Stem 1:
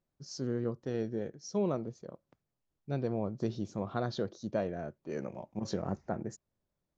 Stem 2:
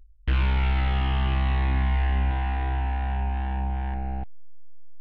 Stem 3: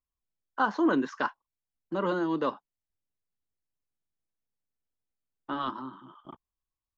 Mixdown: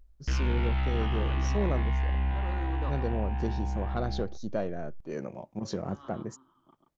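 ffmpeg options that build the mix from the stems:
ffmpeg -i stem1.wav -i stem2.wav -i stem3.wav -filter_complex "[0:a]volume=2dB,asplit=2[link_01][link_02];[1:a]volume=-5dB,asplit=2[link_03][link_04];[link_04]volume=-15.5dB[link_05];[2:a]adelay=400,volume=-9.5dB,asplit=2[link_06][link_07];[link_07]volume=-12.5dB[link_08];[link_02]apad=whole_len=325373[link_09];[link_06][link_09]sidechaincompress=threshold=-34dB:ratio=8:attack=7.5:release=1480[link_10];[link_05][link_08]amix=inputs=2:normalize=0,aecho=0:1:137:1[link_11];[link_01][link_03][link_10][link_11]amix=inputs=4:normalize=0,asoftclip=type=tanh:threshold=-18.5dB" out.wav

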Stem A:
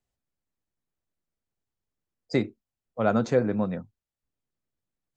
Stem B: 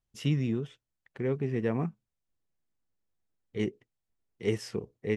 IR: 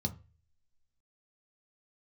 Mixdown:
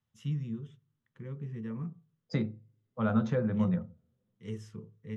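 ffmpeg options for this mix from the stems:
-filter_complex "[0:a]lowpass=frequency=5000:width=0.5412,lowpass=frequency=5000:width=1.3066,acompressor=threshold=-40dB:ratio=1.5,volume=1.5dB,asplit=2[link_01][link_02];[link_02]volume=-7dB[link_03];[1:a]equalizer=frequency=780:width=6.2:gain=-8,acontrast=68,volume=-18.5dB,asplit=2[link_04][link_05];[link_05]volume=-5.5dB[link_06];[2:a]atrim=start_sample=2205[link_07];[link_03][link_06]amix=inputs=2:normalize=0[link_08];[link_08][link_07]afir=irnorm=-1:irlink=0[link_09];[link_01][link_04][link_09]amix=inputs=3:normalize=0,lowshelf=frequency=120:gain=-12"

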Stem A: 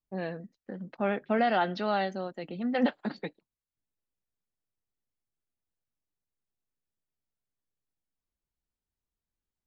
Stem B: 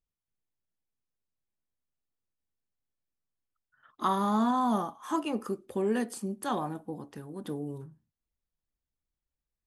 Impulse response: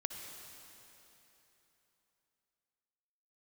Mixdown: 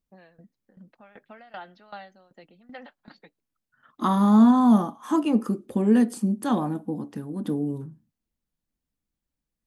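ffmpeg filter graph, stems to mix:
-filter_complex "[0:a]acrossover=split=760|2200[link_01][link_02][link_03];[link_01]acompressor=threshold=-39dB:ratio=4[link_04];[link_02]acompressor=threshold=-34dB:ratio=4[link_05];[link_03]acompressor=threshold=-47dB:ratio=4[link_06];[link_04][link_05][link_06]amix=inputs=3:normalize=0,aeval=exprs='val(0)*pow(10,-19*if(lt(mod(2.6*n/s,1),2*abs(2.6)/1000),1-mod(2.6*n/s,1)/(2*abs(2.6)/1000),(mod(2.6*n/s,1)-2*abs(2.6)/1000)/(1-2*abs(2.6)/1000))/20)':channel_layout=same,volume=-3dB[link_07];[1:a]equalizer=frequency=230:width_type=o:width=1.4:gain=11,volume=2dB[link_08];[link_07][link_08]amix=inputs=2:normalize=0,bandreject=frequency=390:width=12"

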